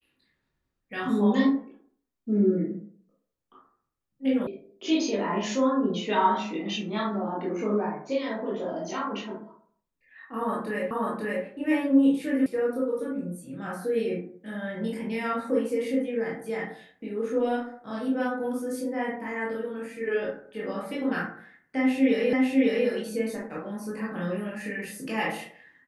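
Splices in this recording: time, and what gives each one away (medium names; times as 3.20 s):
4.47 s: sound stops dead
10.91 s: repeat of the last 0.54 s
12.46 s: sound stops dead
22.33 s: repeat of the last 0.55 s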